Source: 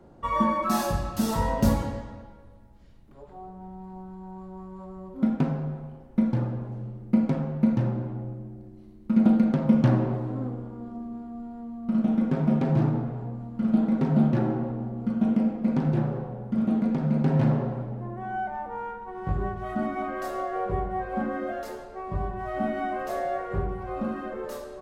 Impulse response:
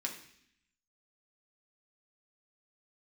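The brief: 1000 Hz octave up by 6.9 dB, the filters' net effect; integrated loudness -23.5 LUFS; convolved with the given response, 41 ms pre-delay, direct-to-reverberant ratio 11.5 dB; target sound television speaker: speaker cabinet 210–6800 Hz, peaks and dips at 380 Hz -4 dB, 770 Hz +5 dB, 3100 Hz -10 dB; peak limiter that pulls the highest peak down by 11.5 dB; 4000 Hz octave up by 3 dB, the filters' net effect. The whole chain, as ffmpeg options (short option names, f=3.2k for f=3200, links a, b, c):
-filter_complex "[0:a]equalizer=f=1k:t=o:g=5.5,equalizer=f=4k:t=o:g=7,alimiter=limit=-19.5dB:level=0:latency=1,asplit=2[a][b];[1:a]atrim=start_sample=2205,adelay=41[c];[b][c]afir=irnorm=-1:irlink=0,volume=-13dB[d];[a][d]amix=inputs=2:normalize=0,highpass=f=210:w=0.5412,highpass=f=210:w=1.3066,equalizer=f=380:t=q:w=4:g=-4,equalizer=f=770:t=q:w=4:g=5,equalizer=f=3.1k:t=q:w=4:g=-10,lowpass=f=6.8k:w=0.5412,lowpass=f=6.8k:w=1.3066,volume=6dB"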